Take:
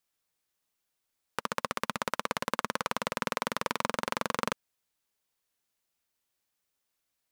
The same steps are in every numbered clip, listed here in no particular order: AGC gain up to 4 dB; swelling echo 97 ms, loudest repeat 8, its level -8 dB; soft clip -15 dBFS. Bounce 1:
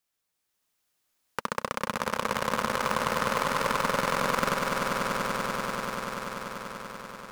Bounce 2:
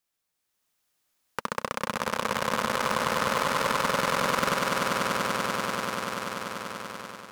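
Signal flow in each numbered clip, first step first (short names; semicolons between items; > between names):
soft clip > AGC > swelling echo; swelling echo > soft clip > AGC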